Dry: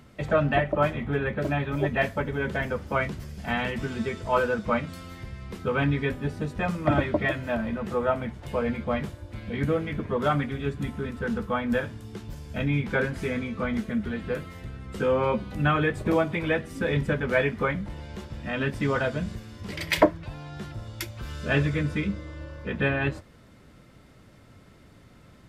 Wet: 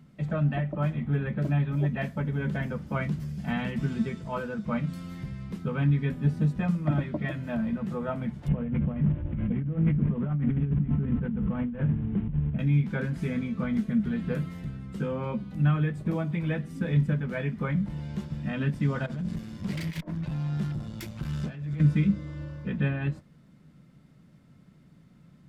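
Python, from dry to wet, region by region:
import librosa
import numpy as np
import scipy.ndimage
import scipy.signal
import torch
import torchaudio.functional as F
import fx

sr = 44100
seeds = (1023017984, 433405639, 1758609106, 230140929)

y = fx.chain(x, sr, fx.cvsd(bps=16000),
    fx.tilt_eq(slope=-3.0),
    fx.over_compress(threshold_db=-30.0, ratio=-1.0), at=(8.48, 12.59))
y = fx.chain(y, sr, fx.over_compress(threshold_db=-33.0, ratio=-1.0),
    fx.tube_stage(drive_db=30.0, bias=0.65), at=(19.06, 21.8))
y = fx.rider(y, sr, range_db=4, speed_s=0.5)
y = fx.curve_eq(y, sr, hz=(110.0, 150.0, 400.0), db=(0, 15, -1))
y = y * librosa.db_to_amplitude(-7.0)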